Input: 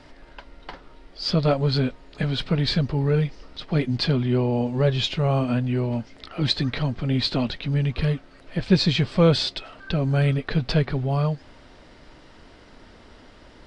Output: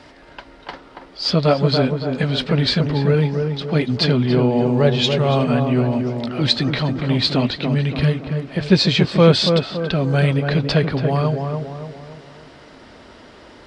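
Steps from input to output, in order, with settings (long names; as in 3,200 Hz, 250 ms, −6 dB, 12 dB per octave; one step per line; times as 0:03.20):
high-pass filter 45 Hz
low-shelf EQ 140 Hz −6.5 dB
tape delay 283 ms, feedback 54%, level −3 dB, low-pass 1,100 Hz
level +6 dB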